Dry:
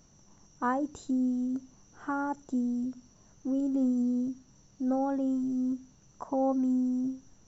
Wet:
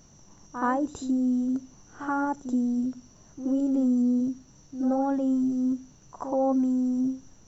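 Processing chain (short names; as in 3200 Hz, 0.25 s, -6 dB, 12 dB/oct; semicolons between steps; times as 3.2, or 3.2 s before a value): reverse echo 77 ms -11 dB; in parallel at -2 dB: limiter -26.5 dBFS, peak gain reduction 7 dB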